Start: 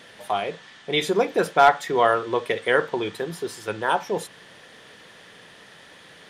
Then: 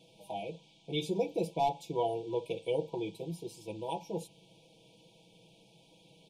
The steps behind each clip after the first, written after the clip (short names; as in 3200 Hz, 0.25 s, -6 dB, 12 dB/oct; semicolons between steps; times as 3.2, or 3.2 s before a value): comb 6.1 ms, depth 94%; FFT band-reject 970–2200 Hz; EQ curve 130 Hz 0 dB, 1700 Hz -11 dB, 3500 Hz -8 dB; gain -8 dB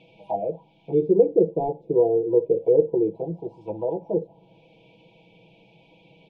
envelope low-pass 430–2200 Hz down, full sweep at -33.5 dBFS; gain +6.5 dB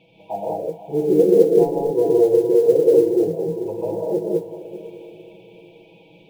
diffused feedback echo 0.481 s, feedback 40%, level -12.5 dB; non-linear reverb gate 0.23 s rising, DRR -3.5 dB; modulation noise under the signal 32 dB; gain -1.5 dB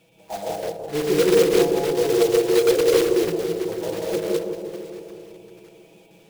block floating point 3-bit; on a send: analogue delay 0.163 s, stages 1024, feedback 63%, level -6 dB; on the sum: gain -4 dB